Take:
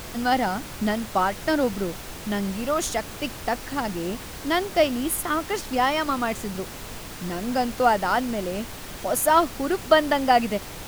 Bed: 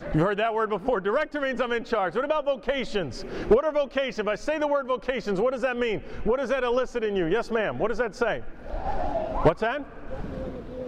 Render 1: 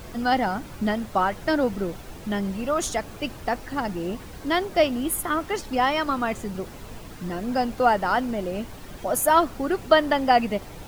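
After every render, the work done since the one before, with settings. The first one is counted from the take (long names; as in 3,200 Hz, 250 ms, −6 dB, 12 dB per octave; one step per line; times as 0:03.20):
broadband denoise 9 dB, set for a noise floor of −38 dBFS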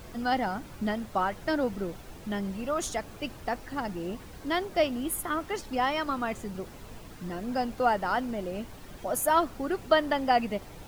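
level −5.5 dB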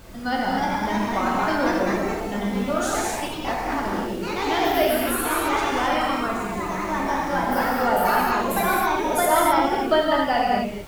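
delay with pitch and tempo change per echo 347 ms, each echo +2 semitones, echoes 3
reverb whose tail is shaped and stops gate 290 ms flat, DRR −4 dB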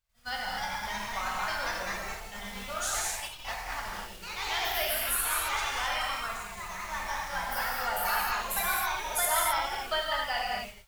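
downward expander −24 dBFS
guitar amp tone stack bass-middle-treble 10-0-10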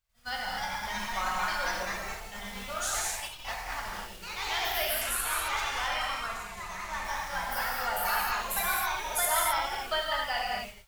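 0:00.95–0:01.85: comb filter 5.5 ms, depth 56%
0:05.01–0:07.05: linearly interpolated sample-rate reduction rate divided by 2×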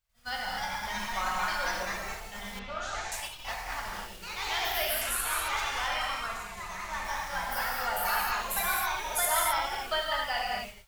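0:02.59–0:03.12: high-frequency loss of the air 170 metres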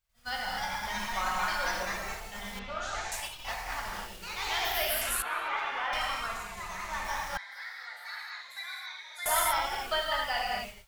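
0:05.22–0:05.93: three-way crossover with the lows and the highs turned down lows −22 dB, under 180 Hz, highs −22 dB, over 3,100 Hz
0:07.37–0:09.26: pair of resonant band-passes 2,800 Hz, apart 0.9 octaves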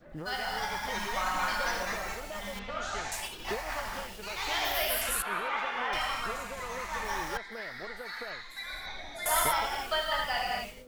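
mix in bed −18.5 dB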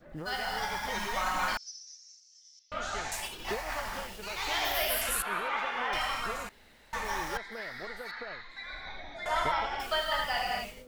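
0:01.57–0:02.72: flat-topped band-pass 5,600 Hz, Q 5.1
0:06.49–0:06.93: fill with room tone
0:08.11–0:09.80: high-frequency loss of the air 170 metres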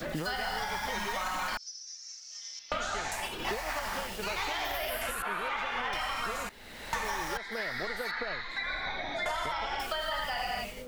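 brickwall limiter −23.5 dBFS, peak gain reduction 6.5 dB
multiband upward and downward compressor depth 100%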